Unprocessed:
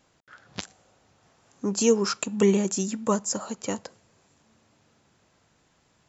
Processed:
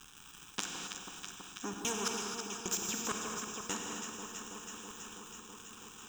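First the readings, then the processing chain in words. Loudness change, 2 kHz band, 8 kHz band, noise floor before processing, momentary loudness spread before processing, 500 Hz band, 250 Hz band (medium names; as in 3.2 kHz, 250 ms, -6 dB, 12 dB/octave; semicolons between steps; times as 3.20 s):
-13.5 dB, -2.5 dB, no reading, -66 dBFS, 17 LU, -18.0 dB, -17.0 dB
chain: single-diode clipper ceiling -23.5 dBFS; high-pass 230 Hz 24 dB/octave; in parallel at +2 dB: peak limiter -20.5 dBFS, peak gain reduction 9.5 dB; on the sum: trance gate ".....x.xx" 130 bpm -60 dB; crackle 440 per s -43 dBFS; static phaser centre 3 kHz, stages 8; on a send: echo whose repeats swap between lows and highs 163 ms, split 1.2 kHz, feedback 82%, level -10 dB; on the sum: gated-style reverb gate 290 ms flat, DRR 4 dB; spectrum-flattening compressor 2:1; trim -2 dB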